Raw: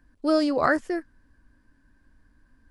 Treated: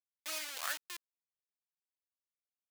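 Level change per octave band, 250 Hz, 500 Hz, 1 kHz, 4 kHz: -40.0, -30.0, -19.0, -3.5 dB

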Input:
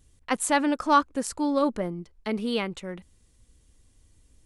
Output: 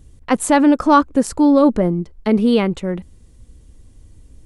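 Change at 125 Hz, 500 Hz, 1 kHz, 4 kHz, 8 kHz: +15.0, +11.0, +7.0, +4.0, +4.5 dB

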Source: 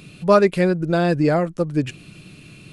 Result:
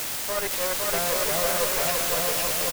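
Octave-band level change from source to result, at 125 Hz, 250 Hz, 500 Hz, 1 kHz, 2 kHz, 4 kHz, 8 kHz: -17.5 dB, -19.0 dB, -8.5 dB, -4.5 dB, 0.0 dB, +9.5 dB, n/a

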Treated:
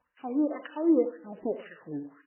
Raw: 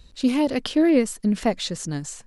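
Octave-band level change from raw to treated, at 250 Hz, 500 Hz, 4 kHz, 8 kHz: -7.5 dB, -5.5 dB, under -25 dB, under -40 dB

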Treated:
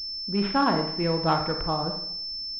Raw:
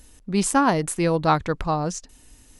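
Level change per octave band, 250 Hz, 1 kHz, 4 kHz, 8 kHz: -3.5 dB, -3.5 dB, +9.0 dB, under -30 dB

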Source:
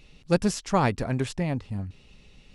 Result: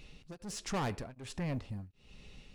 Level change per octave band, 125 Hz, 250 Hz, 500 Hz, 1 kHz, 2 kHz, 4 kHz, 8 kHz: -11.5, -13.5, -15.0, -13.0, -11.0, -8.0, -8.0 dB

